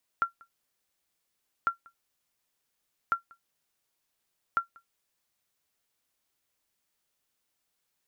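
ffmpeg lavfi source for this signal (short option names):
-f lavfi -i "aevalsrc='0.15*(sin(2*PI*1370*mod(t,1.45))*exp(-6.91*mod(t,1.45)/0.12)+0.0422*sin(2*PI*1370*max(mod(t,1.45)-0.19,0))*exp(-6.91*max(mod(t,1.45)-0.19,0)/0.12))':d=5.8:s=44100"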